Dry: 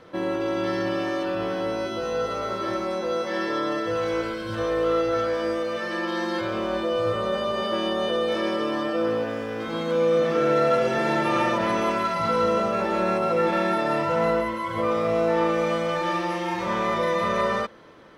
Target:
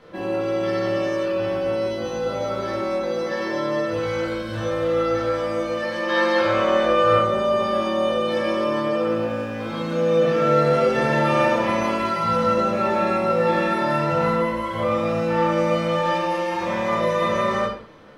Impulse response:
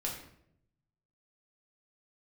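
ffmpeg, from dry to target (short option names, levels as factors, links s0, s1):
-filter_complex "[0:a]asettb=1/sr,asplit=3[s0][s1][s2];[s0]atrim=end=6.094[s3];[s1]atrim=start=6.09:end=7.19,asetpts=PTS-STARTPTS,afade=t=in:d=0.004:c=qsin,afade=t=out:st=1.096:d=0.004:c=qsin,equalizer=f=1700:t=o:w=2.8:g=9.5[s4];[s2]atrim=start=7.186[s5];[s3][s4]acrossfade=d=0.004:c1=hsin:c2=qsin[s6];[s6][s5]acrossfade=d=0.004:c1=qsin:c2=hsin[s7];[1:a]atrim=start_sample=2205,afade=t=out:st=0.26:d=0.01,atrim=end_sample=11907[s8];[s7][s8]afir=irnorm=-1:irlink=0"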